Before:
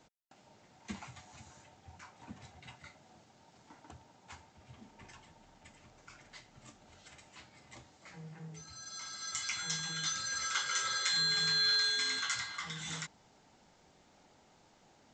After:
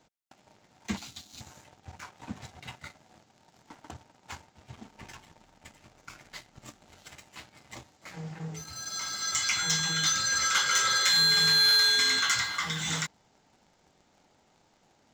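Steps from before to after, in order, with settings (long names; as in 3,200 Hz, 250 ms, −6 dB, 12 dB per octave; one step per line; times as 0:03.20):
0:00.97–0:01.41: octave-band graphic EQ 125/250/500/1,000/2,000/4,000 Hz −12/+6/−10/−10/−10/+11 dB
leveller curve on the samples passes 2
level +2.5 dB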